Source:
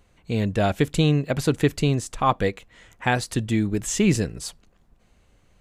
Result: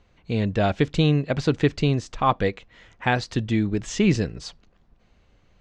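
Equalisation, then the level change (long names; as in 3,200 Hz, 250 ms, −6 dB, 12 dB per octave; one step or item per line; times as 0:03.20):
low-pass filter 5,700 Hz 24 dB per octave
0.0 dB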